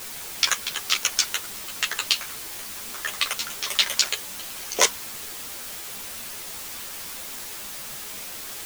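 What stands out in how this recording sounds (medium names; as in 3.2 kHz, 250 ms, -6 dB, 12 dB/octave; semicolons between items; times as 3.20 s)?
chopped level 1.1 Hz, depth 60%, duty 65%; a quantiser's noise floor 6-bit, dither triangular; a shimmering, thickened sound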